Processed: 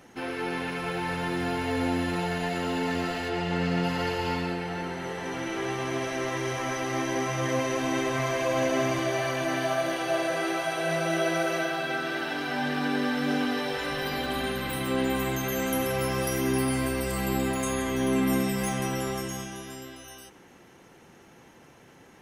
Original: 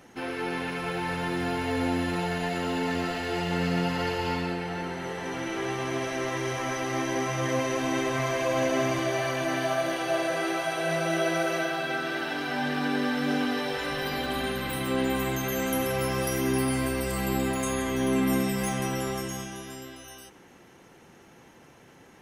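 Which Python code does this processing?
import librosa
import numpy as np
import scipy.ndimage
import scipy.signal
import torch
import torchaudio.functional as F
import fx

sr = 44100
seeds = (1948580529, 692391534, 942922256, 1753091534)

y = fx.high_shelf(x, sr, hz=fx.line((3.28, 6700.0), (3.83, 9800.0)), db=-11.0, at=(3.28, 3.83), fade=0.02)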